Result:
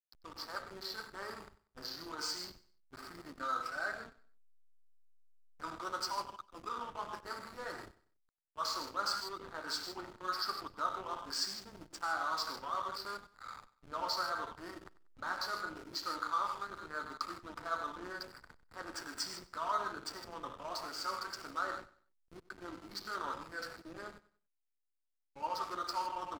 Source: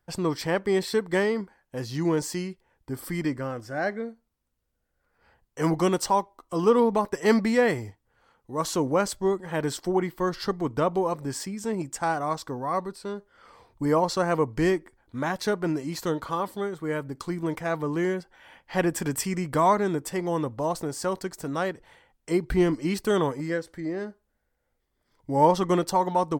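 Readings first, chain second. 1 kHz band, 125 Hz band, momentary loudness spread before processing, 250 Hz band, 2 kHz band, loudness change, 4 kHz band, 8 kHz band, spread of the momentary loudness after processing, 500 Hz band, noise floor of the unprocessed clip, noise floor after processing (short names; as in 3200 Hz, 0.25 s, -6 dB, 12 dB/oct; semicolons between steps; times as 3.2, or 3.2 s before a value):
-10.0 dB, -28.5 dB, 11 LU, -25.0 dB, -8.5 dB, -13.0 dB, -2.0 dB, -11.0 dB, 14 LU, -22.0 dB, -76 dBFS, -83 dBFS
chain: opening faded in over 1.51 s; reverse; compressor 5:1, threshold -35 dBFS, peak gain reduction 19 dB; reverse; comb 3.2 ms, depth 34%; non-linear reverb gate 0.18 s flat, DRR 2 dB; flange 0.75 Hz, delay 9.4 ms, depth 1.7 ms, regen -38%; double band-pass 2500 Hz, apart 1.8 oct; backlash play -54 dBFS; on a send: feedback echo 95 ms, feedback 33%, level -18.5 dB; on the sum: gain +16.5 dB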